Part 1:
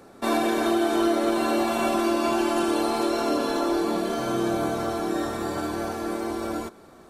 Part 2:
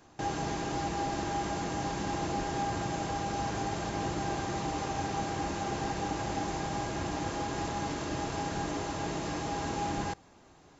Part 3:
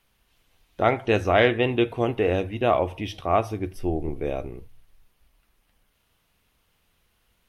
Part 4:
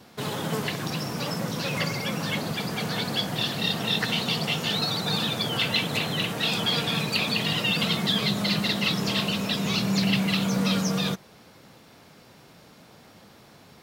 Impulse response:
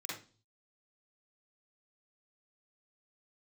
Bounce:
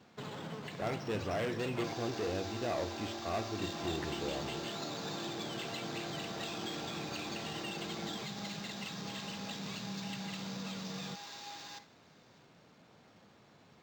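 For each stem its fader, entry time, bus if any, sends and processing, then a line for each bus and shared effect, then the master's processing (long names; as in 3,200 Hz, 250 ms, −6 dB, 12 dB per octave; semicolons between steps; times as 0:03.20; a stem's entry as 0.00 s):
−9.0 dB, 1.55 s, no send, downward compressor 4 to 1, threshold −34 dBFS, peak gain reduction 13 dB
+1.0 dB, 1.65 s, send −7.5 dB, first difference
−9.0 dB, 0.00 s, no send, soft clipping −22.5 dBFS, distortion −7 dB
−9.5 dB, 0.00 s, muted 0:01.94–0:03.58, no send, downward compressor, threshold −30 dBFS, peak gain reduction 11 dB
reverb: on, RT60 0.35 s, pre-delay 42 ms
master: high-pass filter 74 Hz; linearly interpolated sample-rate reduction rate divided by 4×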